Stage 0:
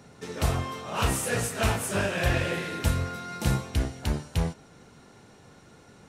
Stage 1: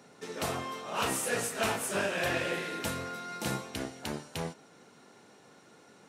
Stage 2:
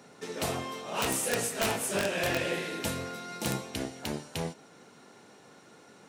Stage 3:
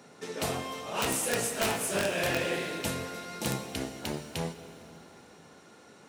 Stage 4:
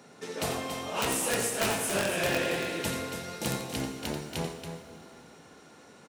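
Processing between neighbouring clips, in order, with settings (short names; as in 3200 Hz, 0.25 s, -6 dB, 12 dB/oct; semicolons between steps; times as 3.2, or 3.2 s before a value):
HPF 230 Hz 12 dB/oct; gain -2.5 dB
dynamic EQ 1300 Hz, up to -5 dB, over -49 dBFS, Q 1.4; wrapped overs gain 21.5 dB; gain +2.5 dB
plate-style reverb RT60 3.6 s, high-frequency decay 0.85×, DRR 10.5 dB
loudspeakers at several distances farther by 30 m -9 dB, 96 m -8 dB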